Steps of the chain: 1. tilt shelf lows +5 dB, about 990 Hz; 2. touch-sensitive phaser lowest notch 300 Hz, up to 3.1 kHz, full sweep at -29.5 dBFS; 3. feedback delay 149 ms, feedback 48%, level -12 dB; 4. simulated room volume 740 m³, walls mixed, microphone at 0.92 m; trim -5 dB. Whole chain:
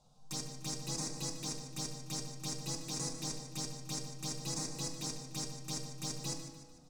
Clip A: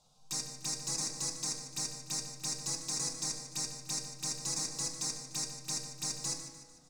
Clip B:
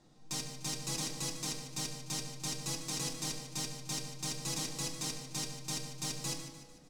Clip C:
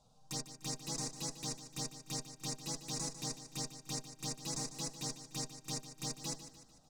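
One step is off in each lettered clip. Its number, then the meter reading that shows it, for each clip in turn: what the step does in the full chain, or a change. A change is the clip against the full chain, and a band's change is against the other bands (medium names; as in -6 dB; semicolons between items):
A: 1, 8 kHz band +7.5 dB; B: 2, 2 kHz band +5.0 dB; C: 4, echo-to-direct -3.0 dB to -11.0 dB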